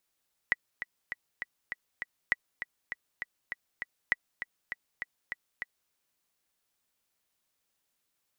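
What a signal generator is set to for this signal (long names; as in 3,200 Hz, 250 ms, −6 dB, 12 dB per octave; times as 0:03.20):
click track 200 BPM, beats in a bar 6, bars 3, 1,950 Hz, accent 10.5 dB −11.5 dBFS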